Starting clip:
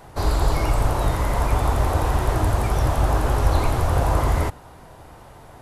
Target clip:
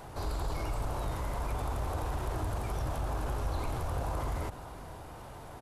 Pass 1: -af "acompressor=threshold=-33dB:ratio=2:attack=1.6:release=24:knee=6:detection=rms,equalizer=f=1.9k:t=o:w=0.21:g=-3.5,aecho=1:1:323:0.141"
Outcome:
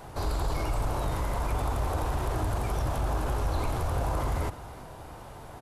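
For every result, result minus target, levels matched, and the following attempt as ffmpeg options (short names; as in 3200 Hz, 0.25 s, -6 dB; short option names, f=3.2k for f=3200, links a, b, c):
echo 0.155 s early; compressor: peak gain reduction -5 dB
-af "acompressor=threshold=-33dB:ratio=2:attack=1.6:release=24:knee=6:detection=rms,equalizer=f=1.9k:t=o:w=0.21:g=-3.5,aecho=1:1:478:0.141"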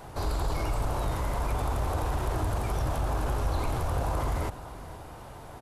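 compressor: peak gain reduction -5 dB
-af "acompressor=threshold=-43dB:ratio=2:attack=1.6:release=24:knee=6:detection=rms,equalizer=f=1.9k:t=o:w=0.21:g=-3.5,aecho=1:1:478:0.141"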